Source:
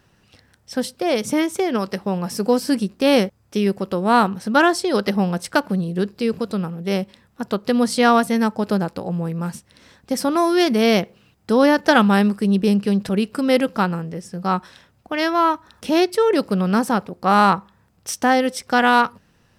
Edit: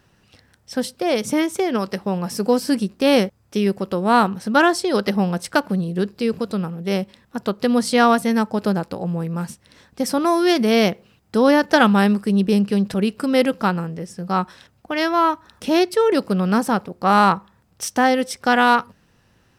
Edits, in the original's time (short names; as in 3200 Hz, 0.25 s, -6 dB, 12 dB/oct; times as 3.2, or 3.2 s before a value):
shrink pauses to 75%